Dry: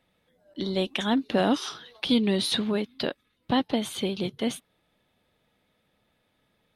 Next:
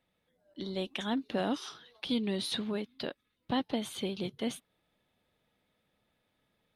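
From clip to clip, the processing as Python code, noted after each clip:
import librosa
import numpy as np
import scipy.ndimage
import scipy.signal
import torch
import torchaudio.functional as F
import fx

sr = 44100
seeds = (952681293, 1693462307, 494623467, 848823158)

y = fx.rider(x, sr, range_db=10, speed_s=2.0)
y = y * 10.0 ** (-8.5 / 20.0)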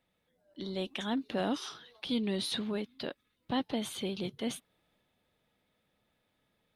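y = fx.transient(x, sr, attack_db=-2, sustain_db=2)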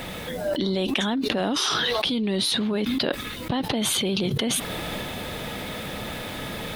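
y = fx.env_flatten(x, sr, amount_pct=100)
y = y * 10.0 ** (4.0 / 20.0)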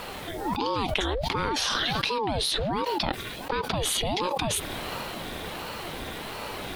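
y = fx.ring_lfo(x, sr, carrier_hz=430.0, swing_pct=70, hz=1.4)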